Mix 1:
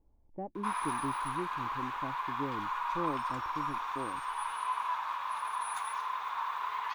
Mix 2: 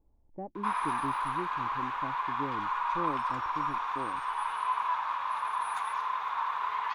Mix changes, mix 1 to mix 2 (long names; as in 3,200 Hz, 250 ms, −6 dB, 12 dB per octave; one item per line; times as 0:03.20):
background +4.0 dB
master: add low-pass filter 3,100 Hz 6 dB per octave